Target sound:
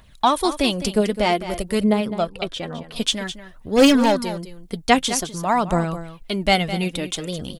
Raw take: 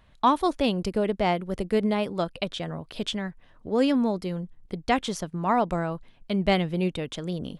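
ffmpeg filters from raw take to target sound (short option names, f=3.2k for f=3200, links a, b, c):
-filter_complex "[0:a]asettb=1/sr,asplit=3[a][b][c];[a]atrim=end=1.814[d];[b]atrim=start=1.81:end=2.96,asetpts=PTS-STARTPTS,afade=t=in:d=0.004:c=qsin,afade=t=out:st=1.146:d=0.004:c=qsin,highshelf=f=3.2k:g=-12[e];[c]atrim=start=2.956[f];[d][e]acrossfade=d=0.004:c1=hsin:c2=qsin[g];[g][f]acrossfade=d=0.004:c1=qsin:c2=hsin,asplit=3[h][i][j];[h]afade=t=out:st=3.76:d=0.02[k];[i]asplit=2[l][m];[m]highpass=f=720:p=1,volume=20dB,asoftclip=type=tanh:threshold=-11.5dB[n];[l][n]amix=inputs=2:normalize=0,lowpass=f=4k:p=1,volume=-6dB,afade=t=in:st=3.76:d=0.02,afade=t=out:st=4.16:d=0.02[o];[j]afade=t=in:st=4.16:d=0.02[p];[k][o][p]amix=inputs=3:normalize=0,crystalizer=i=3:c=0,aphaser=in_gain=1:out_gain=1:delay=4.8:decay=0.49:speed=0.52:type=triangular,aecho=1:1:209:0.237,volume=2.5dB"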